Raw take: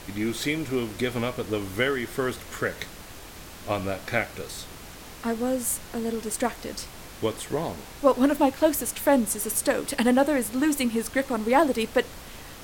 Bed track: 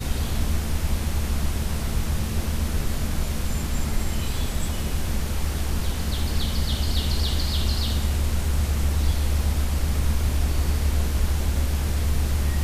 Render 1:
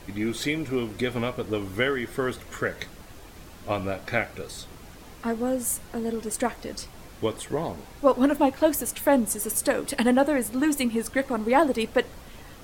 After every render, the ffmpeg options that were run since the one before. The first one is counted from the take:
-af "afftdn=nr=7:nf=-43"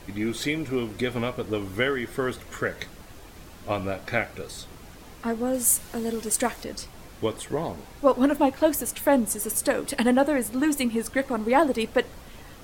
-filter_complex "[0:a]asettb=1/sr,asplit=3[a][b][c];[a]atrim=end=5.544[d];[b]atrim=start=5.54:end=6.64,asetpts=PTS-STARTPTS,afade=t=in:d=0.004:c=qsin,afade=t=out:st=1.096:d=0.004:c=qsin,highshelf=f=2.7k:g=7.5[e];[c]atrim=start=6.636[f];[d][e]acrossfade=d=0.004:c1=hsin:c2=qsin[g];[g][f]acrossfade=d=0.004:c1=qsin:c2=hsin"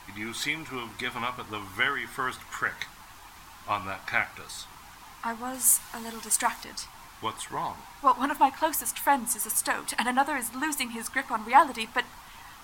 -af "lowshelf=f=700:t=q:w=3:g=-9,bandreject=f=60:t=h:w=6,bandreject=f=120:t=h:w=6,bandreject=f=180:t=h:w=6,bandreject=f=240:t=h:w=6"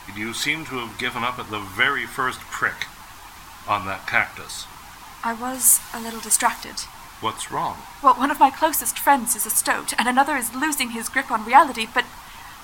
-af "volume=7dB,alimiter=limit=-2dB:level=0:latency=1"

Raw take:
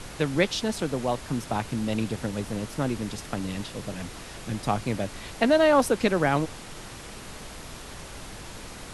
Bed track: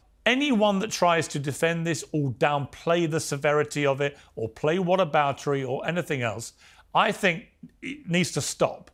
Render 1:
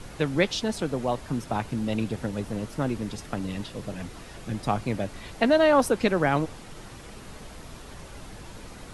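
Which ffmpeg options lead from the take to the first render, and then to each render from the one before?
-af "afftdn=nr=6:nf=-42"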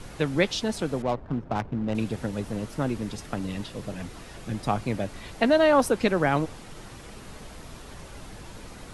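-filter_complex "[0:a]asettb=1/sr,asplit=3[a][b][c];[a]atrim=end=1.024[d];[b]atrim=start=1.02:end=1.95,asetpts=PTS-STARTPTS,afade=t=in:d=0.004:c=qsin,afade=t=out:st=0.926:d=0.004:c=qsin,adynamicsmooth=sensitivity=3.5:basefreq=620[e];[c]atrim=start=1.946[f];[d][e]acrossfade=d=0.004:c1=hsin:c2=qsin[g];[g][f]acrossfade=d=0.004:c1=qsin:c2=hsin"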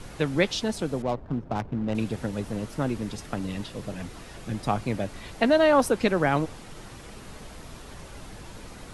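-filter_complex "[0:a]asettb=1/sr,asplit=3[a][b][c];[a]atrim=end=0.714[d];[b]atrim=start=0.71:end=1.69,asetpts=PTS-STARTPTS,afade=t=in:d=0.004:c=qsin,afade=t=out:st=0.976:d=0.004:c=qsin,equalizer=f=1.7k:w=0.58:g=-3[e];[c]atrim=start=1.686[f];[d][e]acrossfade=d=0.004:c1=hsin:c2=qsin[g];[g][f]acrossfade=d=0.004:c1=qsin:c2=hsin"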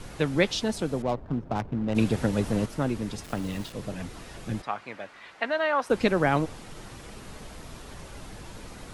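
-filter_complex "[0:a]asettb=1/sr,asplit=3[a][b][c];[a]atrim=end=1.964[d];[b]atrim=start=1.96:end=2.66,asetpts=PTS-STARTPTS,afade=t=in:d=0.004:c=qsin,afade=t=out:st=0.696:d=0.004:c=qsin,acontrast=29[e];[c]atrim=start=2.656[f];[d][e]acrossfade=d=0.004:c1=hsin:c2=qsin[g];[g][f]acrossfade=d=0.004:c1=qsin:c2=hsin,asettb=1/sr,asplit=3[h][i][j];[h]atrim=end=3.244[k];[i]atrim=start=3.24:end=3.73,asetpts=PTS-STARTPTS,afade=t=in:d=0.004:c=qsin,afade=t=out:st=0.486:d=0.004:c=qsin,aeval=exprs='val(0)*gte(abs(val(0)),0.00944)':c=same[l];[j]atrim=start=3.726[m];[k][l]acrossfade=d=0.004:c1=hsin:c2=qsin[n];[n][m]acrossfade=d=0.004:c1=qsin:c2=hsin,asplit=3[o][p][q];[o]afade=t=out:st=4.61:d=0.02[r];[p]bandpass=f=1.6k:t=q:w=1,afade=t=in:st=4.61:d=0.02,afade=t=out:st=5.89:d=0.02[s];[q]afade=t=in:st=5.89:d=0.02[t];[r][s][t]amix=inputs=3:normalize=0"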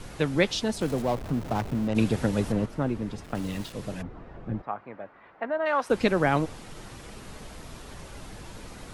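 -filter_complex "[0:a]asettb=1/sr,asplit=3[a][b][c];[a]atrim=end=0.814[d];[b]atrim=start=0.81:end=1.88,asetpts=PTS-STARTPTS,afade=t=in:d=0.004:c=qsin,afade=t=out:st=1.066:d=0.004:c=qsin,aeval=exprs='val(0)+0.5*0.0178*sgn(val(0))':c=same[e];[c]atrim=start=1.876[f];[d][e]acrossfade=d=0.004:c1=hsin:c2=qsin[g];[g][f]acrossfade=d=0.004:c1=qsin:c2=hsin,asettb=1/sr,asplit=3[h][i][j];[h]atrim=end=2.524[k];[i]atrim=start=2.52:end=3.35,asetpts=PTS-STARTPTS,afade=t=in:d=0.004:c=qsin,afade=t=out:st=0.826:d=0.004:c=qsin,highshelf=f=3.2k:g=-11.5[l];[j]atrim=start=3.346[m];[k][l]acrossfade=d=0.004:c1=hsin:c2=qsin[n];[n][m]acrossfade=d=0.004:c1=qsin:c2=hsin,asplit=3[o][p][q];[o]afade=t=out:st=4.01:d=0.02[r];[p]lowpass=1.2k,afade=t=in:st=4.01:d=0.02,afade=t=out:st=5.65:d=0.02[s];[q]afade=t=in:st=5.65:d=0.02[t];[r][s][t]amix=inputs=3:normalize=0"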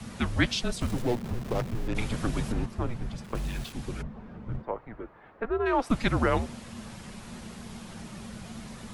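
-filter_complex "[0:a]acrossover=split=400|5500[a][b][c];[a]volume=28dB,asoftclip=hard,volume=-28dB[d];[d][b][c]amix=inputs=3:normalize=0,afreqshift=-240"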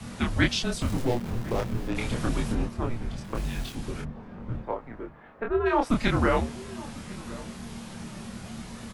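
-filter_complex "[0:a]asplit=2[a][b];[b]adelay=26,volume=-2.5dB[c];[a][c]amix=inputs=2:normalize=0,asplit=2[d][e];[e]adelay=1050,volume=-18dB,highshelf=f=4k:g=-23.6[f];[d][f]amix=inputs=2:normalize=0"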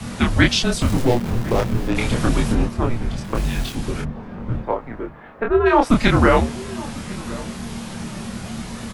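-af "volume=9dB,alimiter=limit=-2dB:level=0:latency=1"

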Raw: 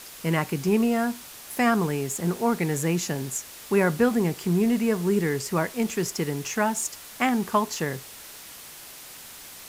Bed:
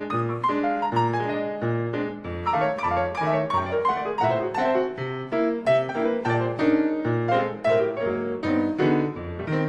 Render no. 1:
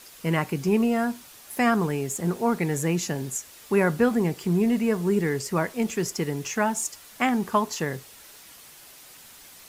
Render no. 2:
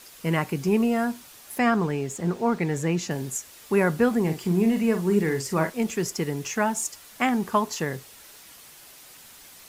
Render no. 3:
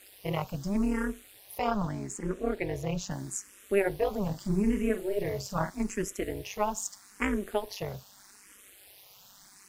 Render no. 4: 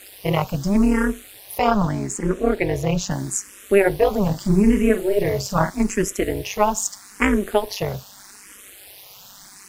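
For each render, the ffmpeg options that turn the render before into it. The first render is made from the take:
-af "afftdn=nr=6:nf=-44"
-filter_complex "[0:a]asettb=1/sr,asplit=3[a][b][c];[a]atrim=end=1.584[d];[b]atrim=start=1.58:end=3.11,asetpts=PTS-STARTPTS,afade=t=in:d=0.004:c=qsin,afade=t=out:st=1.526:d=0.004:c=qsin,equalizer=f=12k:t=o:w=0.94:g=-12[e];[c]atrim=start=3.106[f];[d][e]acrossfade=d=0.004:c1=hsin:c2=qsin[g];[g][f]acrossfade=d=0.004:c1=qsin:c2=hsin,asettb=1/sr,asplit=3[h][i][j];[h]atrim=end=4.224[k];[i]atrim=start=4.22:end=5.7,asetpts=PTS-STARTPTS,afade=t=in:d=0.004:c=qsin,afade=t=out:st=1.476:d=0.004:c=qsin,asplit=2[l][m];[m]adelay=44,volume=-8dB[n];[l][n]amix=inputs=2:normalize=0,atrim=end_sample=65268[o];[j]atrim=start=5.696[p];[k][o]acrossfade=d=0.004:c1=hsin:c2=qsin[q];[q][p]acrossfade=d=0.004:c1=qsin:c2=hsin"
-filter_complex "[0:a]tremolo=f=200:d=0.919,asplit=2[a][b];[b]afreqshift=0.8[c];[a][c]amix=inputs=2:normalize=1"
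-af "volume=11dB,alimiter=limit=-3dB:level=0:latency=1"

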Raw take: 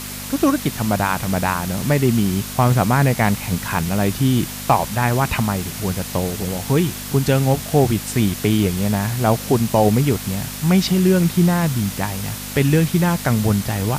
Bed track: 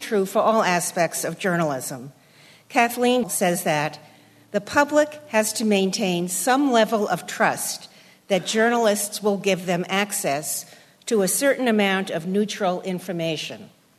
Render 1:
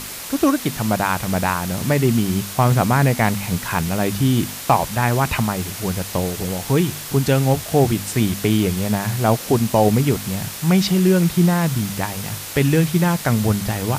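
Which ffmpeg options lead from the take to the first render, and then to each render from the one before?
-af "bandreject=f=50:t=h:w=4,bandreject=f=100:t=h:w=4,bandreject=f=150:t=h:w=4,bandreject=f=200:t=h:w=4,bandreject=f=250:t=h:w=4"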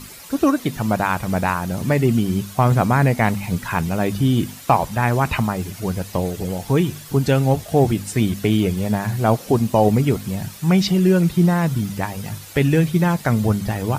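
-af "afftdn=nr=11:nf=-32"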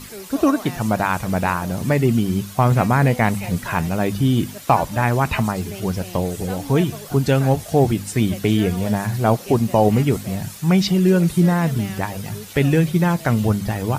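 -filter_complex "[1:a]volume=-16dB[a];[0:a][a]amix=inputs=2:normalize=0"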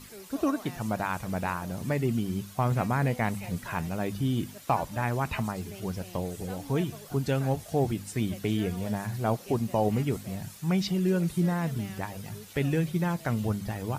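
-af "volume=-10.5dB"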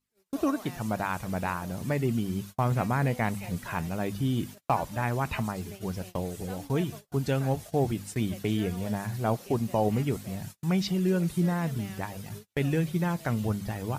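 -af "agate=range=-37dB:threshold=-40dB:ratio=16:detection=peak"

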